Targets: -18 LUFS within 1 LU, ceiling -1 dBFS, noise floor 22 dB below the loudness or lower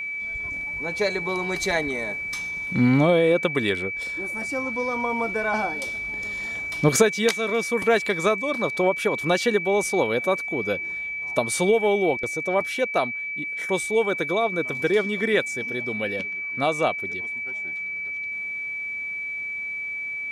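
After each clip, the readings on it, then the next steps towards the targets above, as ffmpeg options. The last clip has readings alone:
steady tone 2300 Hz; tone level -28 dBFS; loudness -24.0 LUFS; peak -6.0 dBFS; loudness target -18.0 LUFS
-> -af "bandreject=f=2.3k:w=30"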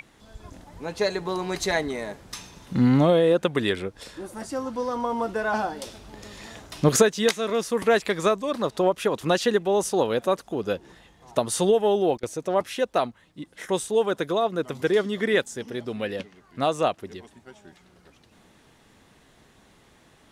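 steady tone none; loudness -24.5 LUFS; peak -5.5 dBFS; loudness target -18.0 LUFS
-> -af "volume=6.5dB,alimiter=limit=-1dB:level=0:latency=1"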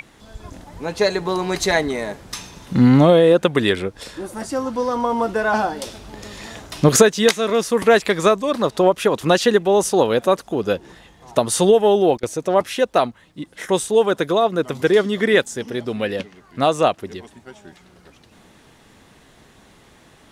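loudness -18.0 LUFS; peak -1.0 dBFS; noise floor -51 dBFS

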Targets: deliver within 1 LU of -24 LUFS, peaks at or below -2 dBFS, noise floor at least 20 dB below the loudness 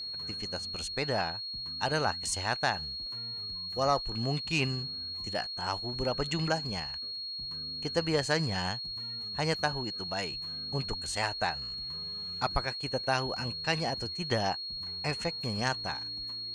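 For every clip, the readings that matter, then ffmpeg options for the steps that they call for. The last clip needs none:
steady tone 4300 Hz; tone level -36 dBFS; loudness -32.0 LUFS; peak -13.0 dBFS; loudness target -24.0 LUFS
-> -af "bandreject=f=4.3k:w=30"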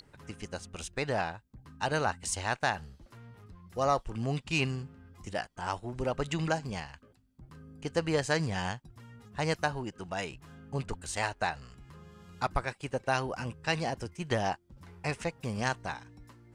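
steady tone none; loudness -33.5 LUFS; peak -14.0 dBFS; loudness target -24.0 LUFS
-> -af "volume=9.5dB"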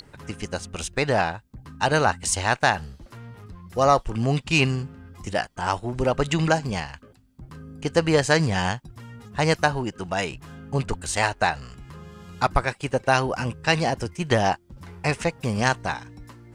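loudness -24.0 LUFS; peak -4.5 dBFS; noise floor -54 dBFS

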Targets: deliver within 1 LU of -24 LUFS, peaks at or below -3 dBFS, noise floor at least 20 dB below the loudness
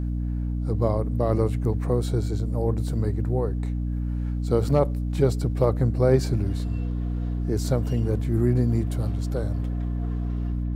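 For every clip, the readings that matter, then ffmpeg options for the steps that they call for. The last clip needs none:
hum 60 Hz; harmonics up to 300 Hz; hum level -24 dBFS; loudness -25.5 LUFS; peak -7.5 dBFS; loudness target -24.0 LUFS
-> -af "bandreject=f=60:t=h:w=6,bandreject=f=120:t=h:w=6,bandreject=f=180:t=h:w=6,bandreject=f=240:t=h:w=6,bandreject=f=300:t=h:w=6"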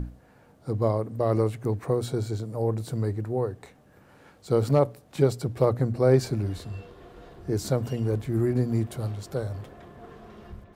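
hum none; loudness -27.0 LUFS; peak -9.0 dBFS; loudness target -24.0 LUFS
-> -af "volume=3dB"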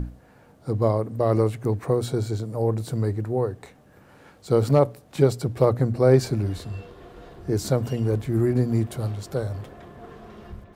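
loudness -24.0 LUFS; peak -6.0 dBFS; noise floor -54 dBFS

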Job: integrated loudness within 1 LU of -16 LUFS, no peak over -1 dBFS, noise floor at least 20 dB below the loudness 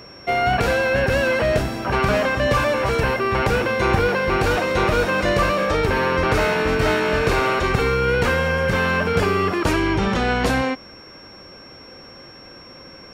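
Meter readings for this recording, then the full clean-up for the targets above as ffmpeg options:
steady tone 5500 Hz; tone level -43 dBFS; loudness -19.5 LUFS; peak -6.5 dBFS; loudness target -16.0 LUFS
-> -af "bandreject=f=5.5k:w=30"
-af "volume=3.5dB"

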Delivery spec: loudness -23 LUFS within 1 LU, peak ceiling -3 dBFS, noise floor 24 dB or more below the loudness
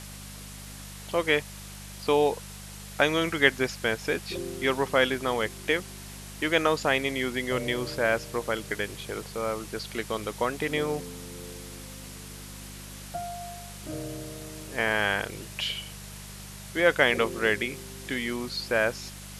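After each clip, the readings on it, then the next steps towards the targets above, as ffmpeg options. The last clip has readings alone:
hum 50 Hz; harmonics up to 200 Hz; hum level -42 dBFS; noise floor -43 dBFS; noise floor target -52 dBFS; loudness -27.5 LUFS; peak -6.0 dBFS; loudness target -23.0 LUFS
-> -af "bandreject=f=50:t=h:w=4,bandreject=f=100:t=h:w=4,bandreject=f=150:t=h:w=4,bandreject=f=200:t=h:w=4"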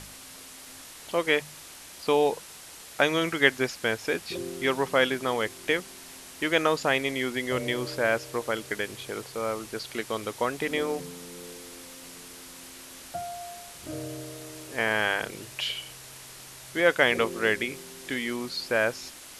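hum none; noise floor -46 dBFS; noise floor target -52 dBFS
-> -af "afftdn=nr=6:nf=-46"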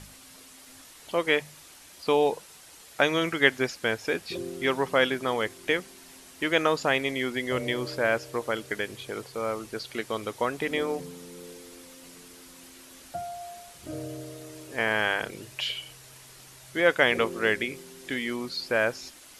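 noise floor -50 dBFS; noise floor target -52 dBFS
-> -af "afftdn=nr=6:nf=-50"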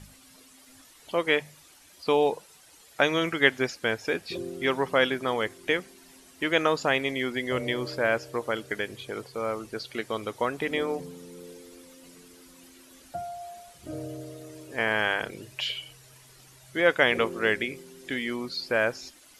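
noise floor -55 dBFS; loudness -27.5 LUFS; peak -6.0 dBFS; loudness target -23.0 LUFS
-> -af "volume=4.5dB,alimiter=limit=-3dB:level=0:latency=1"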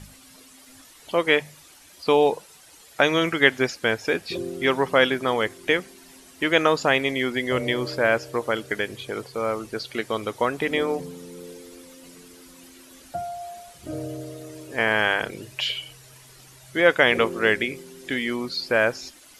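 loudness -23.5 LUFS; peak -3.0 dBFS; noise floor -50 dBFS

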